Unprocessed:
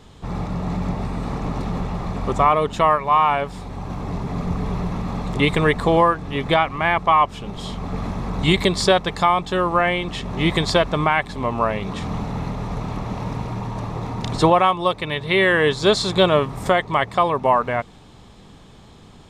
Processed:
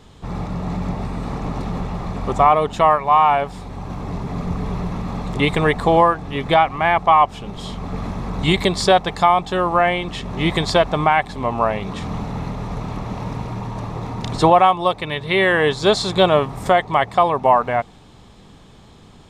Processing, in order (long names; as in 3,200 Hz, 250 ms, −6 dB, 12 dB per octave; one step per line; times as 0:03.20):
dynamic equaliser 760 Hz, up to +7 dB, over −34 dBFS, Q 3.3